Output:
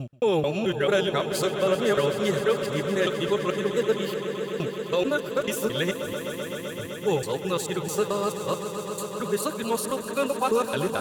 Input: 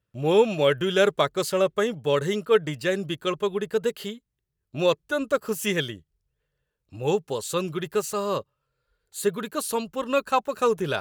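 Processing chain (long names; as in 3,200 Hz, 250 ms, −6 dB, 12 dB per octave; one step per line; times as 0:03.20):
reversed piece by piece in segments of 219 ms
brickwall limiter −15 dBFS, peak gain reduction 7.5 dB
echo that builds up and dies away 128 ms, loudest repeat 5, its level −13 dB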